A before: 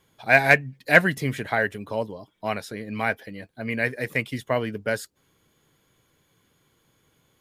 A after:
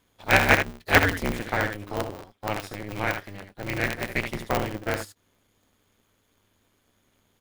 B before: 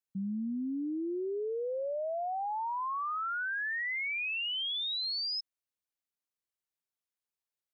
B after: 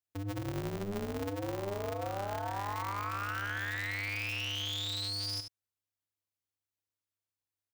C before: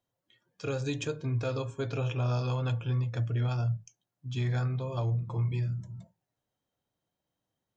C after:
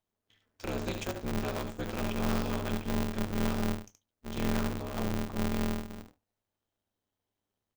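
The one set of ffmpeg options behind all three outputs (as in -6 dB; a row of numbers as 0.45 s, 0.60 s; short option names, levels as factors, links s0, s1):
-af "aeval=exprs='if(lt(val(0),0),0.447*val(0),val(0))':c=same,aecho=1:1:16|74:0.133|0.422,aeval=exprs='val(0)*sgn(sin(2*PI*100*n/s))':c=same,volume=0.891"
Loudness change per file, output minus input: -2.0 LU, -2.5 LU, -2.0 LU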